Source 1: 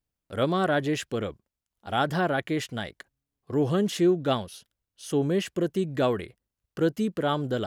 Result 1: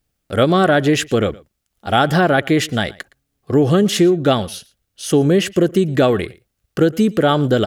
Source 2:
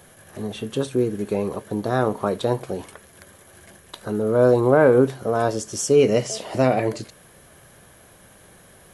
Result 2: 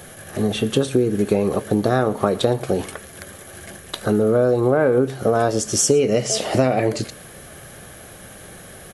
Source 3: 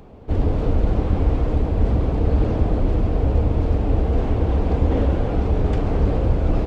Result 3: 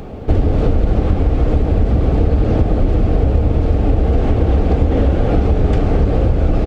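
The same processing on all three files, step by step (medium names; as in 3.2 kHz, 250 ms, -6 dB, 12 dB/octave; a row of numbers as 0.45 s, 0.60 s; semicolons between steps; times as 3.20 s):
band-stop 980 Hz, Q 6.6; compression 10:1, threshold -23 dBFS; delay 115 ms -22.5 dB; peak normalisation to -1.5 dBFS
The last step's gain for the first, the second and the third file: +13.5 dB, +9.5 dB, +13.5 dB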